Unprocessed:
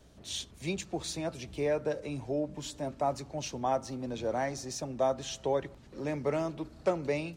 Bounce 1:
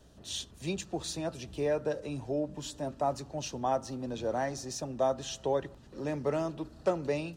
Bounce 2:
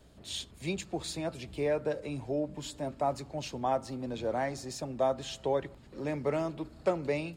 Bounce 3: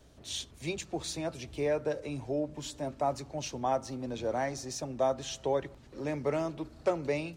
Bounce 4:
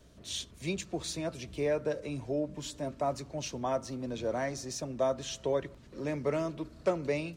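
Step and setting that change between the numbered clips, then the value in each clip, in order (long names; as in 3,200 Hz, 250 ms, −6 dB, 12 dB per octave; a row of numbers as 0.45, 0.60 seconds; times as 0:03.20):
notch filter, centre frequency: 2,200, 5,900, 190, 810 Hertz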